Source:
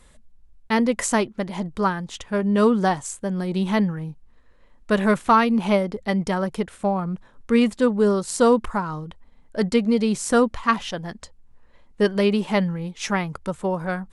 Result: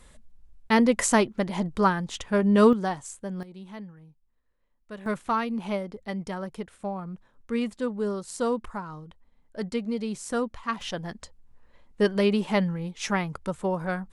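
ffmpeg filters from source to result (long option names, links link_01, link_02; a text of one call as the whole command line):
ffmpeg -i in.wav -af "asetnsamples=nb_out_samples=441:pad=0,asendcmd='2.73 volume volume -8dB;3.43 volume volume -20dB;5.06 volume volume -10dB;10.81 volume volume -3dB',volume=0dB" out.wav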